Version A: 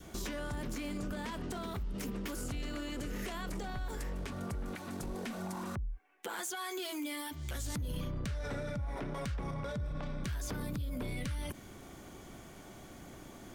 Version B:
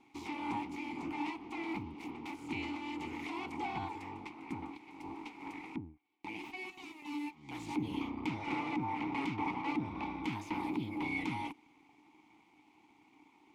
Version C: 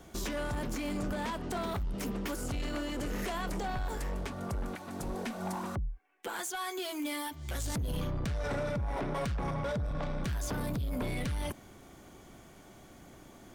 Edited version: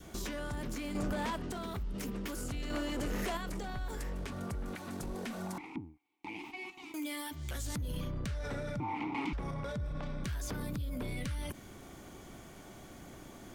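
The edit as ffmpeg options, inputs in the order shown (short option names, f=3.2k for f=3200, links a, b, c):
-filter_complex "[2:a]asplit=2[a][b];[1:a]asplit=2[c][d];[0:a]asplit=5[e][f][g][h][i];[e]atrim=end=0.952[j];[a]atrim=start=0.948:end=1.362[k];[f]atrim=start=1.358:end=2.702[l];[b]atrim=start=2.698:end=3.372[m];[g]atrim=start=3.368:end=5.582[n];[c]atrim=start=5.578:end=6.942[o];[h]atrim=start=6.938:end=8.802[p];[d]atrim=start=8.798:end=9.332[q];[i]atrim=start=9.328[r];[j][k]acrossfade=d=0.004:c1=hsin:c2=hsin[s];[s][l]acrossfade=d=0.004:c1=hsin:c2=hsin[t];[t][m]acrossfade=d=0.004:c1=hsin:c2=hsin[u];[u][n]acrossfade=d=0.004:c1=hsin:c2=hsin[v];[v][o]acrossfade=d=0.004:c1=hsin:c2=hsin[w];[w][p]acrossfade=d=0.004:c1=hsin:c2=hsin[x];[x][q]acrossfade=d=0.004:c1=hsin:c2=hsin[y];[y][r]acrossfade=d=0.004:c1=hsin:c2=hsin"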